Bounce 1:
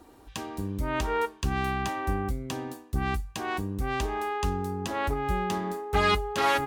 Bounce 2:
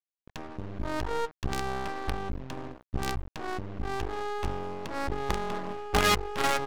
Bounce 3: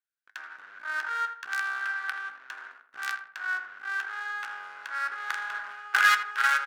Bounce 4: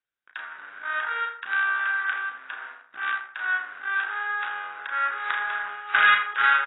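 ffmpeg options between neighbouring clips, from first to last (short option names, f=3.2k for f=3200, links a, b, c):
-af "acrusher=bits=4:dc=4:mix=0:aa=0.000001,adynamicequalizer=threshold=0.00501:dfrequency=5400:dqfactor=0.95:tfrequency=5400:tqfactor=0.95:attack=5:release=100:ratio=0.375:range=2.5:mode=cutabove:tftype=bell,adynamicsmooth=sensitivity=7:basefreq=600"
-filter_complex "[0:a]flanger=delay=8.6:depth=6.9:regen=-78:speed=0.33:shape=sinusoidal,highpass=f=1.5k:t=q:w=8.4,asplit=2[a][b];[b]adelay=81,lowpass=f=2k:p=1,volume=-9dB,asplit=2[c][d];[d]adelay=81,lowpass=f=2k:p=1,volume=0.4,asplit=2[e][f];[f]adelay=81,lowpass=f=2k:p=1,volume=0.4,asplit=2[g][h];[h]adelay=81,lowpass=f=2k:p=1,volume=0.4[i];[c][e][g][i]amix=inputs=4:normalize=0[j];[a][j]amix=inputs=2:normalize=0,volume=1dB"
-filter_complex "[0:a]asplit=2[a][b];[b]volume=23.5dB,asoftclip=hard,volume=-23.5dB,volume=-3.5dB[c];[a][c]amix=inputs=2:normalize=0,asplit=2[d][e];[e]adelay=34,volume=-6dB[f];[d][f]amix=inputs=2:normalize=0" -ar 16000 -c:a aac -b:a 16k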